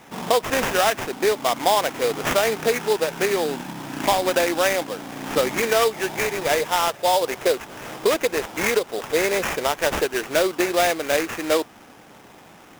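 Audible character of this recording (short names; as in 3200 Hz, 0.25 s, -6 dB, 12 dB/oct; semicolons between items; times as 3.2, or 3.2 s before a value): aliases and images of a low sample rate 4300 Hz, jitter 20%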